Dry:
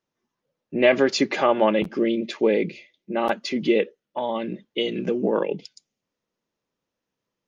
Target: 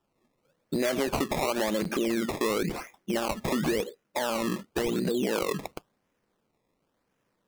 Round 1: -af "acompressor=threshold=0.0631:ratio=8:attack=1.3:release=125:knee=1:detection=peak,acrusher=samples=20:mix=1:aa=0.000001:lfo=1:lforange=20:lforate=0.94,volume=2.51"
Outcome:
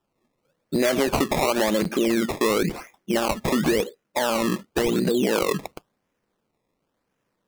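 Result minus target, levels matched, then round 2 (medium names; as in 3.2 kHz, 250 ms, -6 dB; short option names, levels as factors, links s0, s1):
compression: peak gain reduction -6 dB
-af "acompressor=threshold=0.0282:ratio=8:attack=1.3:release=125:knee=1:detection=peak,acrusher=samples=20:mix=1:aa=0.000001:lfo=1:lforange=20:lforate=0.94,volume=2.51"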